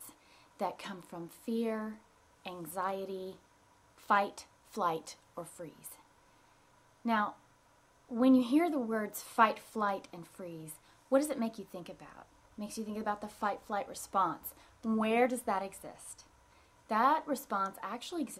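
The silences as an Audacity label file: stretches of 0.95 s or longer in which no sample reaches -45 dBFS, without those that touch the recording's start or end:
5.940000	7.050000	silence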